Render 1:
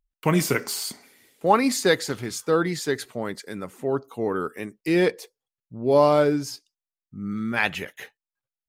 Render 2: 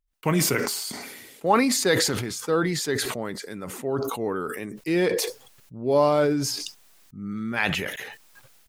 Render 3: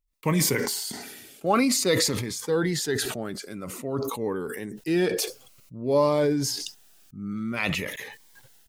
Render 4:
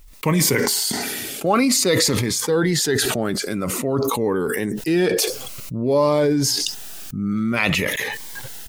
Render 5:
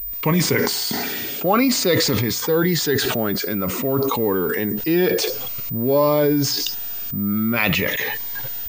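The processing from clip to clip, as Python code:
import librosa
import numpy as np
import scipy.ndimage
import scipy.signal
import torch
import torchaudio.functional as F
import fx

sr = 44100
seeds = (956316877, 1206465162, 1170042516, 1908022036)

y1 = fx.sustainer(x, sr, db_per_s=35.0)
y1 = F.gain(torch.from_numpy(y1), -2.5).numpy()
y2 = fx.notch_cascade(y1, sr, direction='falling', hz=0.52)
y3 = fx.env_flatten(y2, sr, amount_pct=50)
y3 = F.gain(torch.from_numpy(y3), 3.0).numpy()
y4 = fx.law_mismatch(y3, sr, coded='mu')
y4 = fx.pwm(y4, sr, carrier_hz=15000.0)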